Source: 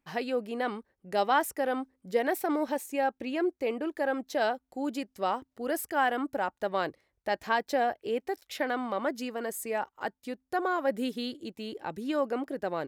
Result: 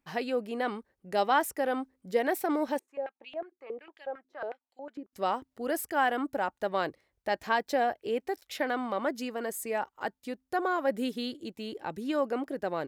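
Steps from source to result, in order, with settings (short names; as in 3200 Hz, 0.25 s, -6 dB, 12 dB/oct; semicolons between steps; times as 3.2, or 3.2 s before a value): 2.79–5.13 stepped band-pass 11 Hz 350–3100 Hz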